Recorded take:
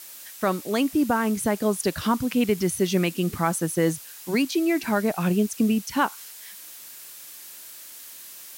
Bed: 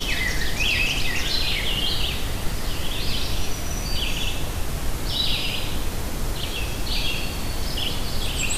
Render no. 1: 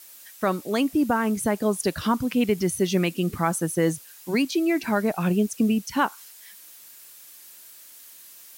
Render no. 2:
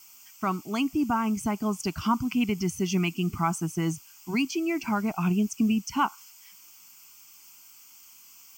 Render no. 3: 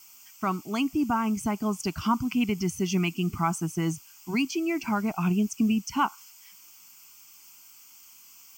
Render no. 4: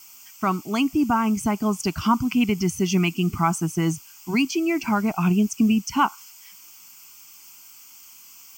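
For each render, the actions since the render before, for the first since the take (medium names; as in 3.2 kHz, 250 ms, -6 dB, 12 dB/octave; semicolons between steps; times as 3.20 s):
noise reduction 6 dB, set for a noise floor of -43 dBFS
static phaser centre 2.6 kHz, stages 8
no audible change
trim +5 dB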